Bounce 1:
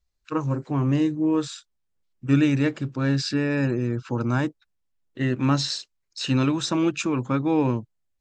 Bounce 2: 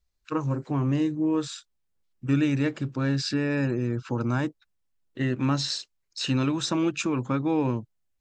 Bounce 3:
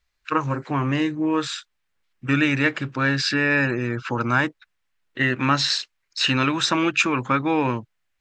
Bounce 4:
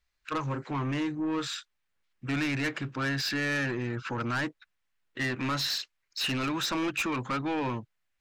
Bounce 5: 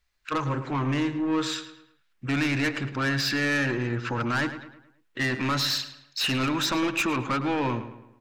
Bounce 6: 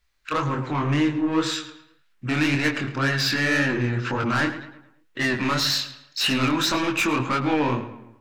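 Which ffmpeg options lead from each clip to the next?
-af "acompressor=threshold=-26dB:ratio=1.5"
-af "equalizer=f=1.9k:t=o:w=2.5:g=15"
-af "asoftclip=type=tanh:threshold=-21dB,volume=-4.5dB"
-filter_complex "[0:a]asplit=2[a][b];[b]adelay=108,lowpass=f=3.8k:p=1,volume=-11dB,asplit=2[c][d];[d]adelay=108,lowpass=f=3.8k:p=1,volume=0.45,asplit=2[e][f];[f]adelay=108,lowpass=f=3.8k:p=1,volume=0.45,asplit=2[g][h];[h]adelay=108,lowpass=f=3.8k:p=1,volume=0.45,asplit=2[i][j];[j]adelay=108,lowpass=f=3.8k:p=1,volume=0.45[k];[a][c][e][g][i][k]amix=inputs=6:normalize=0,volume=4dB"
-af "flanger=delay=19.5:depth=7.3:speed=1.9,volume=6.5dB"

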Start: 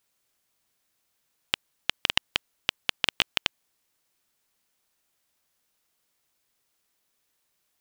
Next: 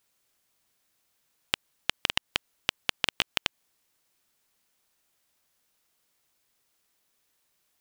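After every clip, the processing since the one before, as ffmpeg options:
-af "acompressor=threshold=-23dB:ratio=5,volume=1.5dB"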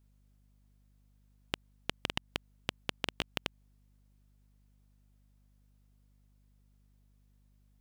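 -af "aeval=exprs='val(0)+0.000398*(sin(2*PI*50*n/s)+sin(2*PI*2*50*n/s)/2+sin(2*PI*3*50*n/s)/3+sin(2*PI*4*50*n/s)/4+sin(2*PI*5*50*n/s)/5)':c=same,tiltshelf=f=650:g=7,volume=-3.5dB"

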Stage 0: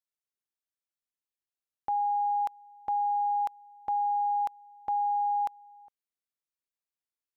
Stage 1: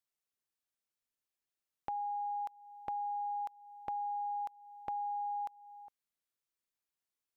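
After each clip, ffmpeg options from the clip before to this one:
-af "acompressor=threshold=-43dB:ratio=2.5,volume=1dB"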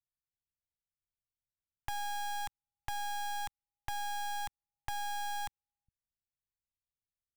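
-filter_complex "[0:a]equalizer=f=410:w=0.73:g=-13.5,acrossover=split=180[a][b];[b]acrusher=bits=5:dc=4:mix=0:aa=0.000001[c];[a][c]amix=inputs=2:normalize=0,volume=10dB"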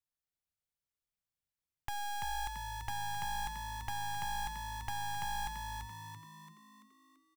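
-filter_complex "[0:a]asplit=7[a][b][c][d][e][f][g];[b]adelay=337,afreqshift=53,volume=-4.5dB[h];[c]adelay=674,afreqshift=106,volume=-10.7dB[i];[d]adelay=1011,afreqshift=159,volume=-16.9dB[j];[e]adelay=1348,afreqshift=212,volume=-23.1dB[k];[f]adelay=1685,afreqshift=265,volume=-29.3dB[l];[g]adelay=2022,afreqshift=318,volume=-35.5dB[m];[a][h][i][j][k][l][m]amix=inputs=7:normalize=0,volume=-1.5dB"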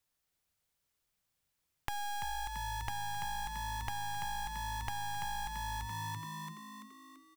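-af "acompressor=threshold=-46dB:ratio=6,volume=10.5dB"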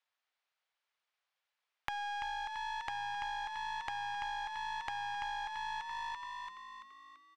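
-filter_complex "[0:a]highpass=380,lowpass=6.1k,acrossover=split=560 4000:gain=0.0794 1 0.224[a][b][c];[a][b][c]amix=inputs=3:normalize=0,aeval=exprs='0.0944*(cos(1*acos(clip(val(0)/0.0944,-1,1)))-cos(1*PI/2))+0.00841*(cos(6*acos(clip(val(0)/0.0944,-1,1)))-cos(6*PI/2))':c=same,volume=2.5dB"

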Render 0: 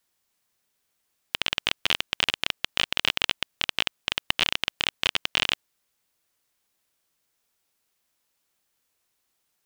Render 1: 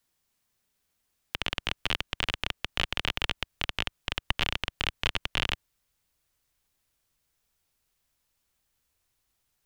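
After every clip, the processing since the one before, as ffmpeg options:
-filter_complex "[0:a]asubboost=boost=3:cutoff=100,acrossover=split=240|2300[a][b][c];[a]acontrast=55[d];[c]alimiter=limit=-15.5dB:level=0:latency=1:release=85[e];[d][b][e]amix=inputs=3:normalize=0,volume=-2dB"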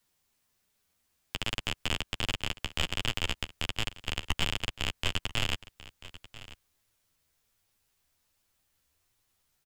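-af "asoftclip=type=tanh:threshold=-17dB,flanger=delay=8.7:depth=5.4:regen=-3:speed=1.3:shape=triangular,aecho=1:1:990:0.141,volume=5dB"

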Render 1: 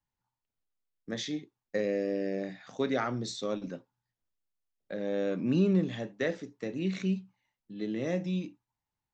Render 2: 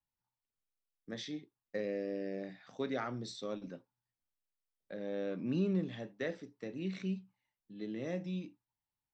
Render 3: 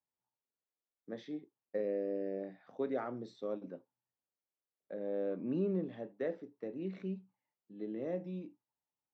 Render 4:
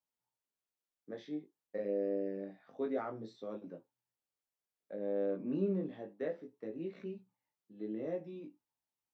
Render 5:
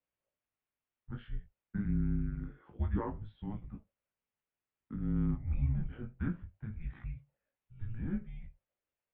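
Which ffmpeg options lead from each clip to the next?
-af "bandreject=f=6.7k:w=5.5,volume=-7dB"
-af "bandpass=f=480:t=q:w=0.82:csg=0,volume=2.5dB"
-af "flanger=delay=18:depth=2.3:speed=0.27,volume=2dB"
-af "highpass=f=190:t=q:w=0.5412,highpass=f=190:t=q:w=1.307,lowpass=f=3.2k:t=q:w=0.5176,lowpass=f=3.2k:t=q:w=0.7071,lowpass=f=3.2k:t=q:w=1.932,afreqshift=-330,volume=3.5dB"

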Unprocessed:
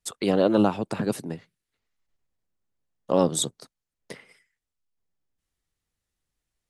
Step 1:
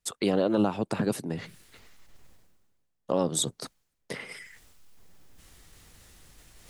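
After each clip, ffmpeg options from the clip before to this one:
-af "alimiter=limit=-14dB:level=0:latency=1:release=157,areverse,acompressor=mode=upward:threshold=-30dB:ratio=2.5,areverse"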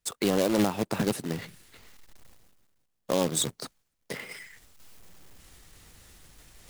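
-af "acrusher=bits=2:mode=log:mix=0:aa=0.000001"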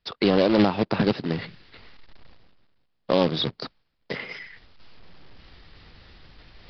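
-af "aresample=11025,aresample=44100,volume=5.5dB"

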